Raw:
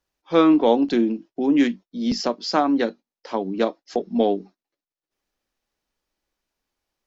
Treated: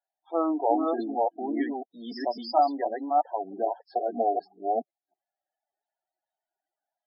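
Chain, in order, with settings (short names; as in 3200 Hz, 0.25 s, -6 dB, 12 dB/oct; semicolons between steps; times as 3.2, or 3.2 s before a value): reverse delay 0.321 s, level -1.5 dB; speaker cabinet 480–4700 Hz, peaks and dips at 500 Hz -7 dB, 710 Hz +9 dB, 1100 Hz -7 dB, 2500 Hz -7 dB; loudest bins only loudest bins 16; gain -4 dB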